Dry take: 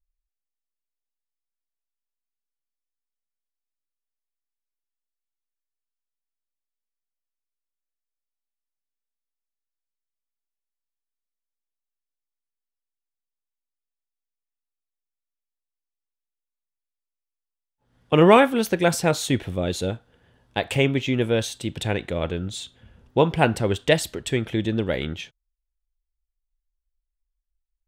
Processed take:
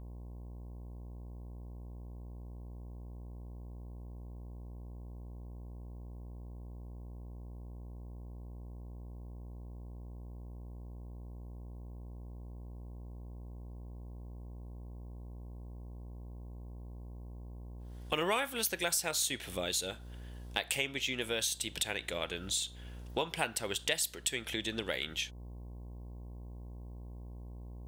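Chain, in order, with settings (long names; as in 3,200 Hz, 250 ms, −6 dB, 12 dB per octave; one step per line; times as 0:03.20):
spectral tilt +4.5 dB per octave
hum with harmonics 60 Hz, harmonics 18, −45 dBFS −8 dB per octave
downward compressor 3 to 1, threshold −33 dBFS, peak gain reduction 17 dB
level −1 dB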